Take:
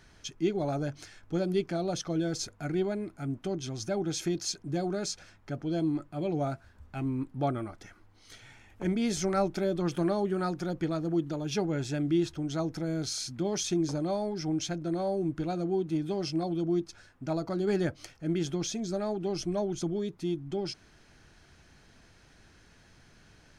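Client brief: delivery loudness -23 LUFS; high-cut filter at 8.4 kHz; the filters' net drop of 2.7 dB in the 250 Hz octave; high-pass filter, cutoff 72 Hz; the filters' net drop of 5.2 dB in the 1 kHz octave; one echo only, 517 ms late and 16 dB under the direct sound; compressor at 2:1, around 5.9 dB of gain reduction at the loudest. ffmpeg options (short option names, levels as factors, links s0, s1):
-af "highpass=72,lowpass=8400,equalizer=f=250:t=o:g=-3.5,equalizer=f=1000:t=o:g=-8,acompressor=threshold=0.0158:ratio=2,aecho=1:1:517:0.158,volume=5.62"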